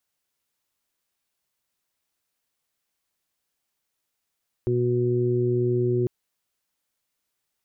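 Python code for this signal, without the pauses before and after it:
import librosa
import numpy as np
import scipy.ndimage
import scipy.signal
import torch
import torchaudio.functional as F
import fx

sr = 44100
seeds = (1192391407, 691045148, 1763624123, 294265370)

y = fx.additive_steady(sr, length_s=1.4, hz=122.0, level_db=-24.0, upper_db=(-7.5, 2.0, -17))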